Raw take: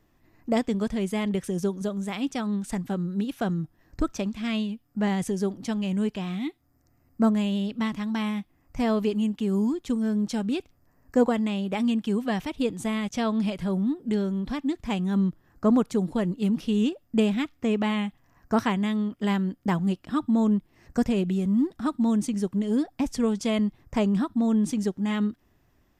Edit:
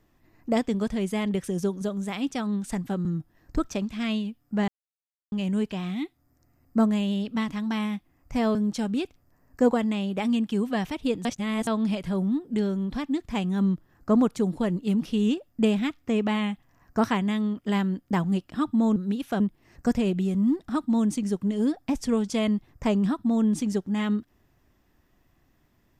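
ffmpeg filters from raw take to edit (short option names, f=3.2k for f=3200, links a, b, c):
-filter_complex "[0:a]asplit=9[a][b][c][d][e][f][g][h][i];[a]atrim=end=3.052[j];[b]atrim=start=3.488:end=5.12,asetpts=PTS-STARTPTS,afade=t=out:st=1.628:d=0.004:c=hsin[k];[c]atrim=start=5.12:end=5.76,asetpts=PTS-STARTPTS,volume=0[l];[d]atrim=start=5.76:end=8.992,asetpts=PTS-STARTPTS,afade=t=in:d=0.004:c=hsin[m];[e]atrim=start=10.098:end=12.802[n];[f]atrim=start=12.798:end=13.222,asetpts=PTS-STARTPTS,areverse[o];[g]atrim=start=13.218:end=20.512[p];[h]atrim=start=3.048:end=3.492[q];[i]atrim=start=20.508[r];[k][l][m]concat=n=3:v=0:a=1[s];[j][s]acrossfade=d=0.004:c1=hsin:c2=hsin[t];[t][n]acrossfade=d=0.004:c1=hsin:c2=hsin[u];[u][o]acrossfade=d=0.004:c1=hsin:c2=hsin[v];[v][p]acrossfade=d=0.004:c1=hsin:c2=hsin[w];[w][q]acrossfade=d=0.004:c1=hsin:c2=hsin[x];[x][r]acrossfade=d=0.004:c1=hsin:c2=hsin"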